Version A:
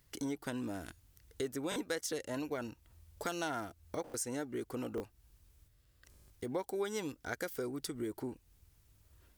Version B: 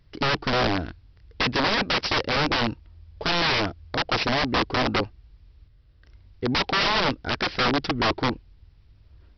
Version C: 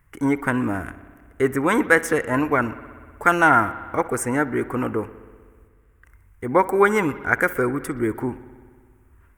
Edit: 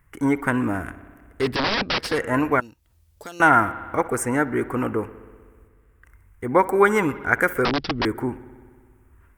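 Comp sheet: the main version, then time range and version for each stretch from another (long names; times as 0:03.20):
C
0:01.48–0:02.10: punch in from B, crossfade 0.24 s
0:02.60–0:03.40: punch in from A
0:07.65–0:08.05: punch in from B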